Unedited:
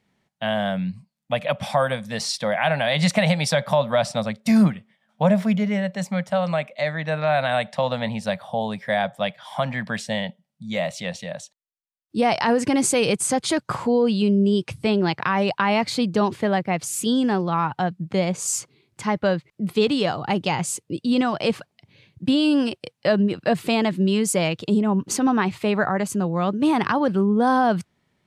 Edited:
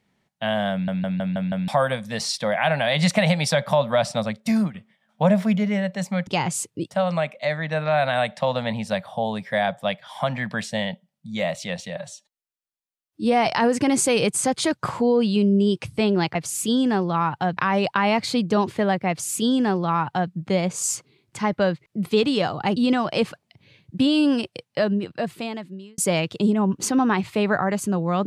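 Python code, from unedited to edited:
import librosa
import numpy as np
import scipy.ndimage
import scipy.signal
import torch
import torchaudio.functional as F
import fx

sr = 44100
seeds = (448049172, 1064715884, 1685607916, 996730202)

y = fx.edit(x, sr, fx.stutter_over(start_s=0.72, slice_s=0.16, count=6),
    fx.fade_out_to(start_s=4.36, length_s=0.38, floor_db=-12.0),
    fx.stretch_span(start_s=11.32, length_s=1.0, factor=1.5),
    fx.duplicate(start_s=16.73, length_s=1.22, to_s=15.21),
    fx.move(start_s=20.4, length_s=0.64, to_s=6.27),
    fx.fade_out_span(start_s=22.74, length_s=1.52), tone=tone)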